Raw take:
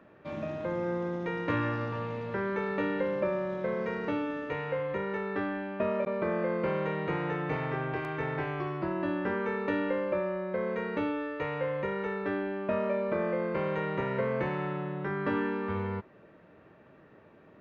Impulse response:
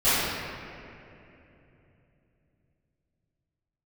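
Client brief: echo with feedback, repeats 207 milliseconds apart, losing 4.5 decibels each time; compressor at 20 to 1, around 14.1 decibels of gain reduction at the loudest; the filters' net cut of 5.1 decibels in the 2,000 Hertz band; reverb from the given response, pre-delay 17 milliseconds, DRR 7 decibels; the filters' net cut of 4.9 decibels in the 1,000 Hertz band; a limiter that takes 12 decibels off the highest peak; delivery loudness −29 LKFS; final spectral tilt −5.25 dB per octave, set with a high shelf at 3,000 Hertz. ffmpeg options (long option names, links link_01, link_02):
-filter_complex "[0:a]equalizer=frequency=1000:width_type=o:gain=-5,equalizer=frequency=2000:width_type=o:gain=-6.5,highshelf=frequency=3000:gain=5.5,acompressor=threshold=-41dB:ratio=20,alimiter=level_in=18dB:limit=-24dB:level=0:latency=1,volume=-18dB,aecho=1:1:207|414|621|828|1035|1242|1449|1656|1863:0.596|0.357|0.214|0.129|0.0772|0.0463|0.0278|0.0167|0.01,asplit=2[link_01][link_02];[1:a]atrim=start_sample=2205,adelay=17[link_03];[link_02][link_03]afir=irnorm=-1:irlink=0,volume=-25.5dB[link_04];[link_01][link_04]amix=inputs=2:normalize=0,volume=18.5dB"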